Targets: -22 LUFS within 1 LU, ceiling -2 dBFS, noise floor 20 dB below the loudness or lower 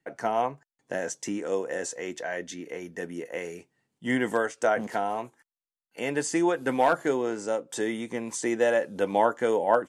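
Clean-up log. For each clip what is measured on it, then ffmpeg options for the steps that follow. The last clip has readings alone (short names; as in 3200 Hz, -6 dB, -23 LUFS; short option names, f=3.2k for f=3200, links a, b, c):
loudness -28.5 LUFS; peak -7.0 dBFS; loudness target -22.0 LUFS
-> -af "volume=6.5dB,alimiter=limit=-2dB:level=0:latency=1"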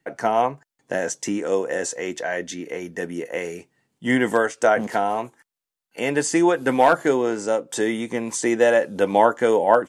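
loudness -22.0 LUFS; peak -2.0 dBFS; noise floor -88 dBFS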